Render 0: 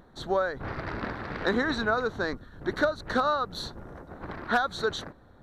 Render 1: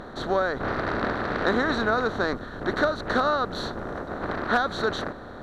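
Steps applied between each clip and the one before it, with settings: spectral levelling over time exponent 0.6; treble shelf 7.3 kHz -8.5 dB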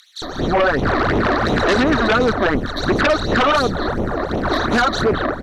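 bands offset in time highs, lows 220 ms, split 3 kHz; phase shifter stages 12, 2.8 Hz, lowest notch 140–1600 Hz; sine folder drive 10 dB, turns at -12 dBFS; trim +1 dB

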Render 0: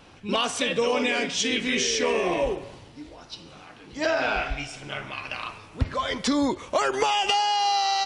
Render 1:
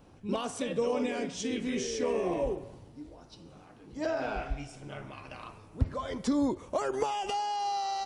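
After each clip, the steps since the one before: peaking EQ 2.9 kHz -14 dB 3 oct; trim -2.5 dB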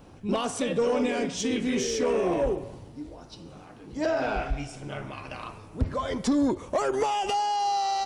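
saturation -23.5 dBFS, distortion -16 dB; trim +6.5 dB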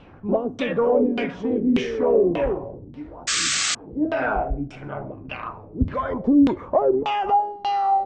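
LFO low-pass saw down 1.7 Hz 220–3200 Hz; painted sound noise, 3.27–3.75 s, 1.1–8.3 kHz -25 dBFS; trim +2.5 dB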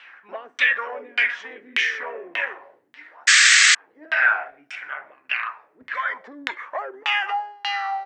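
resonant high-pass 1.8 kHz, resonance Q 4.2; trim +5 dB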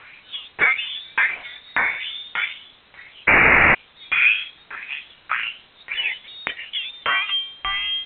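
in parallel at -10 dB: word length cut 6-bit, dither triangular; on the sum: frequency inversion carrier 4 kHz; trim -1 dB

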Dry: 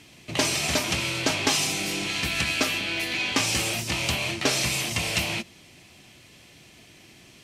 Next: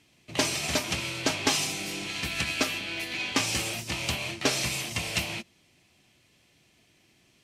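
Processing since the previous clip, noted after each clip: upward expansion 1.5:1, over -42 dBFS; trim -1 dB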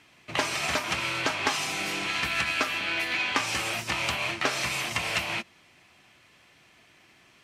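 compression 3:1, threshold -32 dBFS, peak gain reduction 9.5 dB; peaking EQ 1.3 kHz +13 dB 2.1 oct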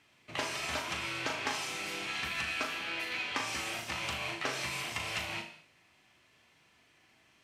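flutter echo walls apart 6.6 m, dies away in 0.34 s; gated-style reverb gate 260 ms falling, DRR 8 dB; trim -9 dB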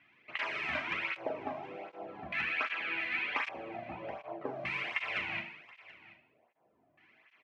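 LFO low-pass square 0.43 Hz 660–2200 Hz; delay 727 ms -19 dB; cancelling through-zero flanger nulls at 1.3 Hz, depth 2.4 ms

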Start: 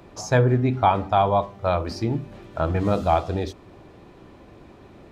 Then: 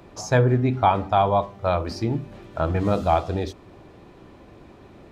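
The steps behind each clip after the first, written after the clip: no audible change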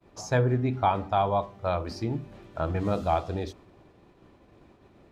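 expander -42 dBFS; trim -5.5 dB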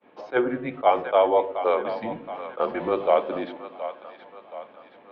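mistuned SSB -120 Hz 430–3400 Hz; two-band feedback delay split 530 Hz, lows 114 ms, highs 723 ms, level -11.5 dB; attacks held to a fixed rise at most 430 dB/s; trim +6.5 dB

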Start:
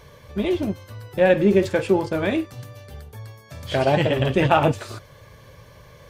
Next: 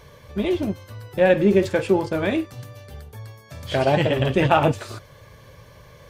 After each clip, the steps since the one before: no audible change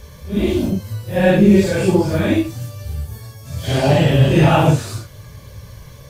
phase randomisation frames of 200 ms; tone controls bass +10 dB, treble +10 dB; trim +2 dB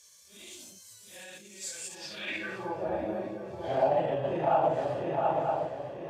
shuffle delay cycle 943 ms, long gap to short 3:1, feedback 40%, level -8.5 dB; peak limiter -11 dBFS, peak gain reduction 9.5 dB; band-pass sweep 7.4 kHz -> 730 Hz, 1.90–2.79 s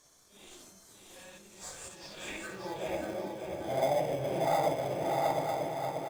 in parallel at -6 dB: sample-rate reducer 2.8 kHz, jitter 0%; on the sum: feedback delay 584 ms, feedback 35%, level -5 dB; reverberation RT60 0.30 s, pre-delay 7 ms, DRR 9.5 dB; trim -7 dB

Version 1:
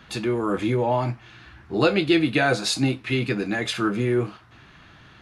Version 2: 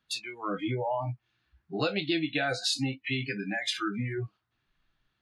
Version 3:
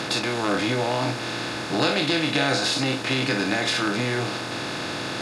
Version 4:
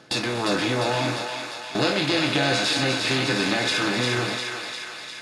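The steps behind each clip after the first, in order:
spectral noise reduction 30 dB; peaking EQ 4.4 kHz +5.5 dB 1.3 oct; compression 2:1, threshold -33 dBFS, peak gain reduction 10.5 dB
spectral levelling over time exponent 0.2
coarse spectral quantiser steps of 15 dB; gate with hold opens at -16 dBFS; thinning echo 351 ms, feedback 68%, high-pass 760 Hz, level -4 dB

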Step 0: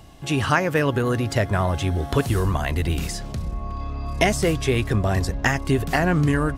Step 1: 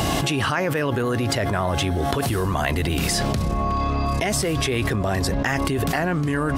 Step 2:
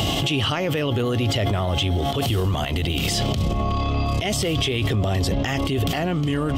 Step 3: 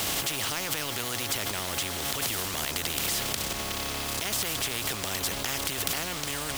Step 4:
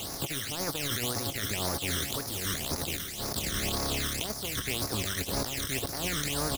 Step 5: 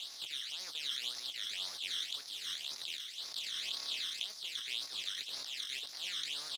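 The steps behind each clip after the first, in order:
dynamic bell 6.8 kHz, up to -4 dB, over -47 dBFS, Q 2.7; high-pass 150 Hz 6 dB/octave; level flattener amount 100%; trim -6.5 dB
graphic EQ with 31 bands 100 Hz +7 dB, 1 kHz -6 dB, 1.6 kHz -11 dB, 3.15 kHz +12 dB, 10 kHz -8 dB; transient shaper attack -5 dB, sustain +6 dB; peak limiter -13 dBFS, peak gain reduction 8 dB
in parallel at -6 dB: word length cut 6-bit, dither none; on the sum: spectrum-flattening compressor 4:1
compressor with a negative ratio -33 dBFS, ratio -0.5; phase shifter stages 12, 1.9 Hz, lowest notch 780–3000 Hz; delay 1079 ms -14 dB; trim +3 dB
band-pass filter 3.6 kHz, Q 2.8; doubling 21 ms -12.5 dB

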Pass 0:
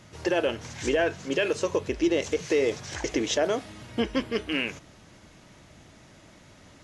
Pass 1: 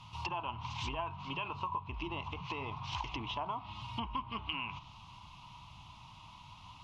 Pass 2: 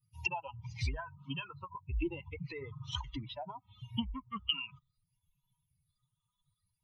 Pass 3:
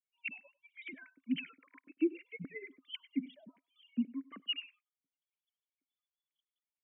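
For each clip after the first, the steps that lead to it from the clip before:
low-pass that closes with the level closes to 1.5 kHz, closed at -24 dBFS; FFT filter 130 Hz 0 dB, 520 Hz -27 dB, 1 kHz +14 dB, 1.7 kHz -22 dB, 2.7 kHz +6 dB, 4.1 kHz 0 dB, 7.3 kHz -13 dB, 11 kHz -10 dB; compression 6:1, threshold -34 dBFS, peak gain reduction 10 dB
expander on every frequency bin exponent 3; phase shifter stages 8, 0.6 Hz, lowest notch 640–1500 Hz; trim +11 dB
formants replaced by sine waves; vowel filter i; delay 98 ms -21.5 dB; trim +10 dB

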